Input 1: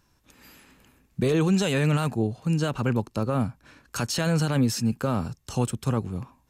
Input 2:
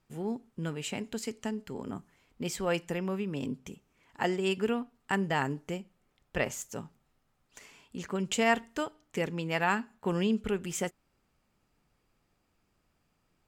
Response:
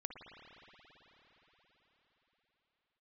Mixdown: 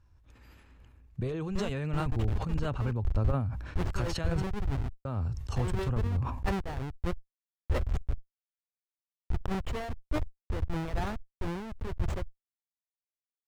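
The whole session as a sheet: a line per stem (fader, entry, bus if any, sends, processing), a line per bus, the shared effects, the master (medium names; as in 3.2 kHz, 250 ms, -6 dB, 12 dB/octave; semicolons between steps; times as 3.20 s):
-6.0 dB, 0.00 s, muted 4.42–5.05 s, no send, compression 2.5:1, threshold -27 dBFS, peak gain reduction 6.5 dB
-1.0 dB, 1.35 s, no send, companded quantiser 8-bit; Schmitt trigger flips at -32 dBFS; upward expansion 2.5:1, over -50 dBFS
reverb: none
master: low-pass 2 kHz 6 dB/octave; resonant low shelf 120 Hz +12.5 dB, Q 1.5; decay stretcher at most 51 dB/s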